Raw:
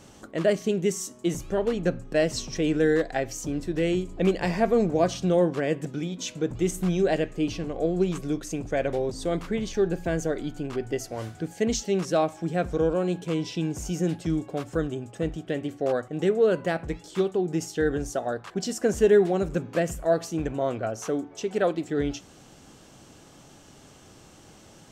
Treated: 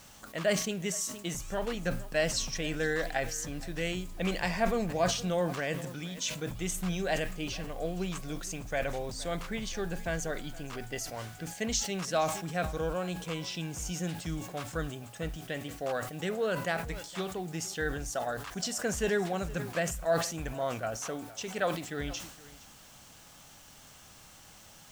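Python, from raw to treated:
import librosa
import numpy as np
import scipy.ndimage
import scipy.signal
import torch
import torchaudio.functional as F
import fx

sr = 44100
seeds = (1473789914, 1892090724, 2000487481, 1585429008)

y = fx.peak_eq(x, sr, hz=110.0, db=-5.5, octaves=1.9)
y = fx.quant_dither(y, sr, seeds[0], bits=10, dither='triangular')
y = fx.peak_eq(y, sr, hz=360.0, db=-13.5, octaves=1.3)
y = y + 10.0 ** (-19.5 / 20.0) * np.pad(y, (int(467 * sr / 1000.0), 0))[:len(y)]
y = fx.sustainer(y, sr, db_per_s=78.0)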